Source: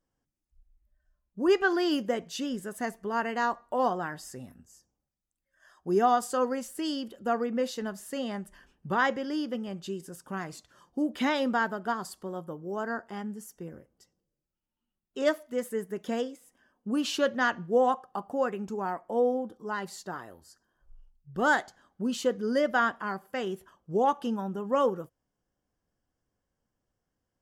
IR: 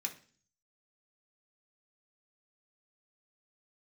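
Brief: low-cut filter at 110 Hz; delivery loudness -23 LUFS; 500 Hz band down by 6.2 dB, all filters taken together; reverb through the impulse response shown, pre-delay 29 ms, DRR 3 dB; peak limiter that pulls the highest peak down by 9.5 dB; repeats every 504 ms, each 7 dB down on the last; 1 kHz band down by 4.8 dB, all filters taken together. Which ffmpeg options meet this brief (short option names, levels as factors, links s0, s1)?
-filter_complex "[0:a]highpass=110,equalizer=f=500:t=o:g=-6.5,equalizer=f=1000:t=o:g=-4,alimiter=level_in=1.19:limit=0.0631:level=0:latency=1,volume=0.841,aecho=1:1:504|1008|1512|2016|2520:0.447|0.201|0.0905|0.0407|0.0183,asplit=2[s0][s1];[1:a]atrim=start_sample=2205,adelay=29[s2];[s1][s2]afir=irnorm=-1:irlink=0,volume=0.668[s3];[s0][s3]amix=inputs=2:normalize=0,volume=3.76"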